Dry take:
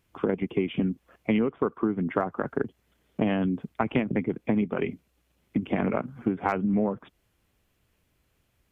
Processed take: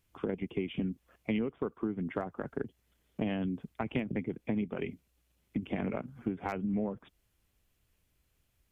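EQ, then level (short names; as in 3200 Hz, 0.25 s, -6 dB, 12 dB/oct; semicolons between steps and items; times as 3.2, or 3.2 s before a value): dynamic EQ 1200 Hz, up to -5 dB, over -43 dBFS, Q 1.5; low shelf 71 Hz +10.5 dB; high shelf 3100 Hz +7.5 dB; -8.5 dB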